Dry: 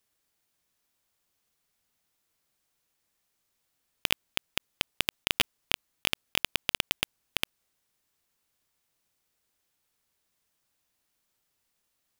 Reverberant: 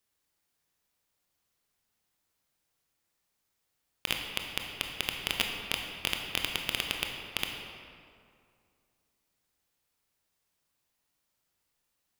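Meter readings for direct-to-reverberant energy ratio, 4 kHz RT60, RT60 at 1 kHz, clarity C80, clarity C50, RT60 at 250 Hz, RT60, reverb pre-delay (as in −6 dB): 1.5 dB, 1.4 s, 2.3 s, 4.5 dB, 3.0 dB, 2.5 s, 2.3 s, 21 ms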